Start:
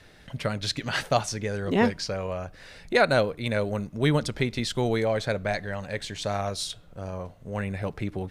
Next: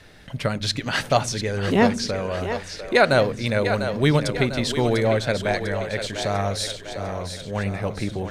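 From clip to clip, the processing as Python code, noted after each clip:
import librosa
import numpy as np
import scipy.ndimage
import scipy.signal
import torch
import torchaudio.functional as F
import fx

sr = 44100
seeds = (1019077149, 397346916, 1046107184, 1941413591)

y = fx.echo_split(x, sr, split_hz=300.0, low_ms=98, high_ms=698, feedback_pct=52, wet_db=-8.5)
y = F.gain(torch.from_numpy(y), 4.0).numpy()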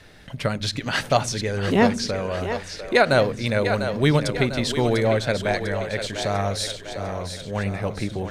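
y = fx.end_taper(x, sr, db_per_s=320.0)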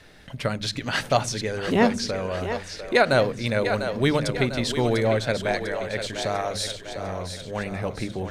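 y = fx.hum_notches(x, sr, base_hz=50, count=4)
y = F.gain(torch.from_numpy(y), -1.5).numpy()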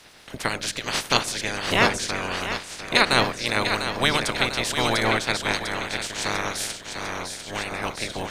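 y = fx.spec_clip(x, sr, under_db=23)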